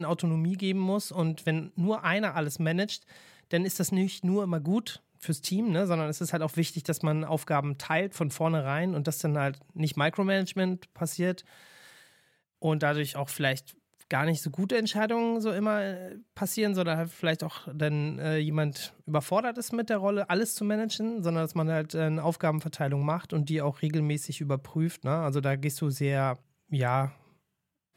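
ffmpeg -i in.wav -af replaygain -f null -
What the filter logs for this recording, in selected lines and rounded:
track_gain = +10.5 dB
track_peak = 0.179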